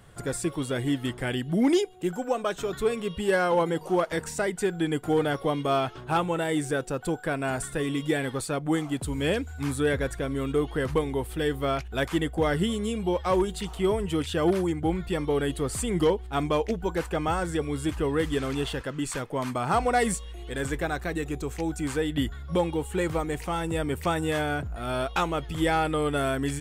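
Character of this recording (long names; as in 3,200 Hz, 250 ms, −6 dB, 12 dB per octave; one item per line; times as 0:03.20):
background noise floor −41 dBFS
spectral slope −5.5 dB per octave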